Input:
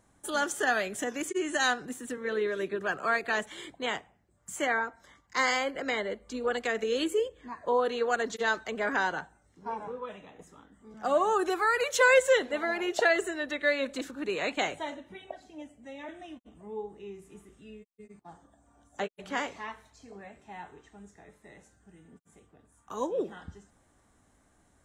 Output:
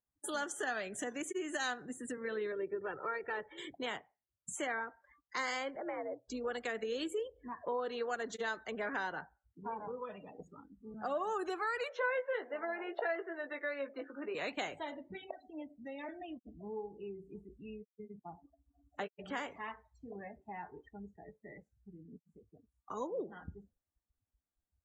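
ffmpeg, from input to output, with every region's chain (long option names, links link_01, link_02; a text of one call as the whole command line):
ffmpeg -i in.wav -filter_complex "[0:a]asettb=1/sr,asplit=3[link_01][link_02][link_03];[link_01]atrim=end=2.524[link_04];[link_02]atrim=start=2.52:end=3.58,asetpts=PTS-STARTPTS,afade=type=in:duration=0.004:curve=qsin,afade=type=out:start_time=1.056:duration=0.004:curve=qsin,lowpass=frequency=1100:poles=1,aecho=1:1:2.2:0.65,atrim=end_sample=46746[link_05];[link_03]atrim=start=3.576[link_06];[link_04][link_05]acrossfade=duration=0.004:curve1=hsin:curve2=qsin[link_07];[link_07][link_06]acrossfade=duration=0.004:curve1=qsin:curve2=hsin,asettb=1/sr,asplit=3[link_08][link_09][link_10];[link_08]atrim=end=5.764[link_11];[link_09]atrim=start=5.76:end=6.28,asetpts=PTS-STARTPTS,afade=type=in:duration=0.004:curve=qsin,afade=type=out:start_time=0.516:duration=0.004:curve=qsin,lowpass=1100,agate=range=-10dB:threshold=-50dB:ratio=16:release=100:detection=peak,afreqshift=71[link_12];[link_10]atrim=start=6.276[link_13];[link_11][link_12]acrossfade=duration=0.004:curve1=hsin:curve2=qsin[link_14];[link_14][link_13]acrossfade=duration=0.004:curve1=qsin:curve2=hsin,asettb=1/sr,asplit=3[link_15][link_16][link_17];[link_15]atrim=end=11.894[link_18];[link_16]atrim=start=11.89:end=14.35,asetpts=PTS-STARTPTS,afade=type=in:duration=0.004:curve=qsin,afade=type=out:start_time=2.456:duration=0.004:curve=qsin,lowpass=frequency=5700:width=0.5412,lowpass=frequency=5700:width=1.3066,acrossover=split=340 2100:gain=0.224 1 0.158[link_19][link_20][link_21];[link_19][link_20][link_21]amix=inputs=3:normalize=0,asplit=2[link_22][link_23];[link_23]adelay=18,volume=-7dB[link_24];[link_22][link_24]amix=inputs=2:normalize=0,atrim=end_sample=108486[link_25];[link_17]atrim=start=14.346[link_26];[link_18][link_25]acrossfade=duration=0.004:curve1=hsin:curve2=qsin[link_27];[link_27][link_26]acrossfade=duration=0.004:curve1=qsin:curve2=hsin,afftdn=noise_reduction=36:noise_floor=-48,acompressor=threshold=-48dB:ratio=2,volume=3dB" out.wav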